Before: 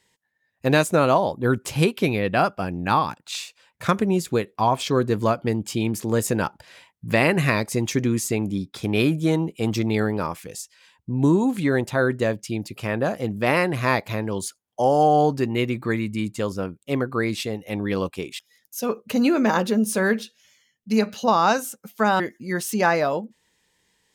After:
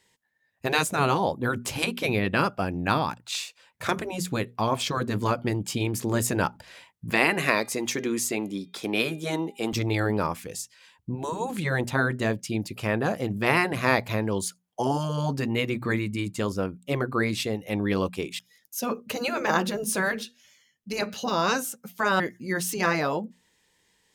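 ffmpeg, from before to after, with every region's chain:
-filter_complex "[0:a]asettb=1/sr,asplit=3[a][b][c];[a]atrim=end=7.104[d];[b]atrim=start=7.1:end=9.73,asetpts=PTS-STARTPTS,afade=t=in:d=0.004:c=qsin,afade=t=out:st=2.626:d=0.004:c=qsin,highpass=300,bandreject=f=404:t=h:w=4,bandreject=f=808:t=h:w=4,bandreject=f=1.212k:t=h:w=4,bandreject=f=1.616k:t=h:w=4,bandreject=f=2.02k:t=h:w=4,bandreject=f=2.424k:t=h:w=4,bandreject=f=2.828k:t=h:w=4,bandreject=f=3.232k:t=h:w=4,bandreject=f=3.636k:t=h:w=4,bandreject=f=4.04k:t=h:w=4,bandreject=f=4.444k:t=h:w=4[e];[c]atrim=start=9.726[f];[d][e]acrossfade=d=0.004:c1=hsin:c2=qsin[g];[g][f]acrossfade=d=0.004:c1=qsin:c2=hsin,bandreject=f=60:t=h:w=6,bandreject=f=120:t=h:w=6,bandreject=f=180:t=h:w=6,bandreject=f=240:t=h:w=6,afftfilt=real='re*lt(hypot(re,im),0.562)':imag='im*lt(hypot(re,im),0.562)':win_size=1024:overlap=0.75"

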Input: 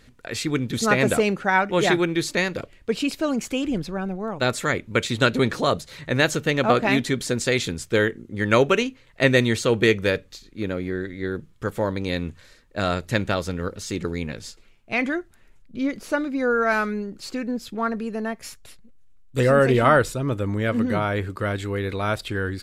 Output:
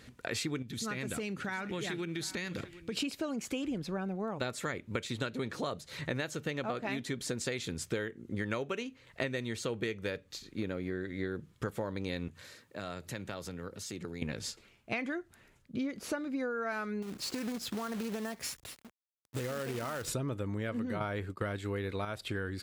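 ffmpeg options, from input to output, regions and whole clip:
-filter_complex "[0:a]asettb=1/sr,asplit=3[a][b][c];[a]atrim=end=0.624[d];[b]atrim=start=0.62:end=2.97,asetpts=PTS-STARTPTS,afade=t=in:d=0.004:c=qsin,afade=t=out:st=2.346:d=0.004:c=qsin,equalizer=f=700:w=0.9:g=-10,acompressor=threshold=-33dB:ratio=4:attack=3.2:release=140:knee=1:detection=peak,aecho=1:1:747:0.126,atrim=end_sample=103635[e];[c]atrim=start=2.966[f];[d][e]acrossfade=d=0.004:c1=hsin:c2=qsin[g];[g][f]acrossfade=d=0.004:c1=qsin:c2=hsin,asettb=1/sr,asplit=3[h][i][j];[h]atrim=end=12.284[k];[i]atrim=start=12.28:end=14.22,asetpts=PTS-STARTPTS,afade=t=in:d=0.004:c=qsin,afade=t=out:st=1.936:d=0.004:c=qsin,highpass=f=82:w=0.5412,highpass=f=82:w=1.3066,highshelf=f=11k:g=7,acompressor=threshold=-44dB:ratio=2.5:attack=3.2:release=140:knee=1:detection=peak[l];[j]atrim=start=14.216[m];[k][l]acrossfade=d=0.004:c1=hsin:c2=qsin[n];[n][m]acrossfade=d=0.004:c1=qsin:c2=hsin,asettb=1/sr,asplit=3[o][p][q];[o]atrim=end=17.024[r];[p]atrim=start=17.02:end=20.08,asetpts=PTS-STARTPTS,afade=t=in:d=0.004:c=qsin,afade=t=out:st=3.056:d=0.004:c=qsin,acompressor=threshold=-31dB:ratio=8:attack=3.2:release=140:knee=1:detection=peak,acrusher=bits=2:mode=log:mix=0:aa=0.000001[s];[q]atrim=start=20.076[t];[r][s]acrossfade=d=0.004:c1=hsin:c2=qsin[u];[u][t]acrossfade=d=0.004:c1=qsin:c2=hsin,asettb=1/sr,asplit=3[v][w][x];[v]atrim=end=21.004[y];[w]atrim=start=21:end=22.05,asetpts=PTS-STARTPTS,afade=t=in:d=0.004:c=qsin,afade=t=out:st=1.046:d=0.004:c=qsin,acontrast=85,agate=range=-33dB:threshold=-21dB:ratio=3:release=100:detection=peak[z];[x]atrim=start=22.046[aa];[y][z]acrossfade=d=0.004:c1=hsin:c2=qsin[ab];[ab][aa]acrossfade=d=0.004:c1=qsin:c2=hsin,highpass=63,acompressor=threshold=-32dB:ratio=12"

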